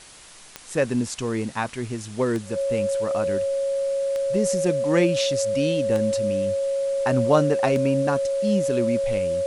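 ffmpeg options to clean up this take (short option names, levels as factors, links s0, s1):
-af "adeclick=t=4,bandreject=f=550:w=30,afwtdn=0.0063"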